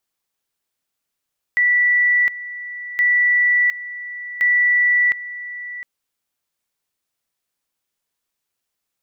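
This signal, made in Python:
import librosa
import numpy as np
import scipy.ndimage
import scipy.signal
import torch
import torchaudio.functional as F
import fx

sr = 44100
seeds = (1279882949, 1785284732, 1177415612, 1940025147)

y = fx.two_level_tone(sr, hz=1960.0, level_db=-12.5, drop_db=15.5, high_s=0.71, low_s=0.71, rounds=3)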